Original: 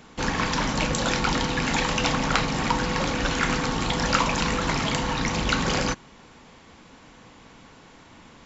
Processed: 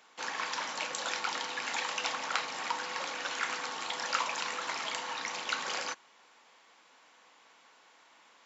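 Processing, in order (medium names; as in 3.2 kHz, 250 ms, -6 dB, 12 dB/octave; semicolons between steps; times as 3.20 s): high-pass 690 Hz 12 dB/octave; trim -8 dB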